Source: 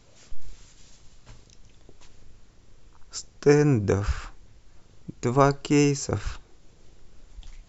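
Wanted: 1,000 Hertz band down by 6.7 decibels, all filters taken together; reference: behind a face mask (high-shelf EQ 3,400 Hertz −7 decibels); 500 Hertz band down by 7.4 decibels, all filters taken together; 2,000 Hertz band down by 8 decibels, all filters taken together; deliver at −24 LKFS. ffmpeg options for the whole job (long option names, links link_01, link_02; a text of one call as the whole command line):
ffmpeg -i in.wav -af "equalizer=frequency=500:width_type=o:gain=-8,equalizer=frequency=1000:width_type=o:gain=-3.5,equalizer=frequency=2000:width_type=o:gain=-7,highshelf=frequency=3400:gain=-7,volume=3dB" out.wav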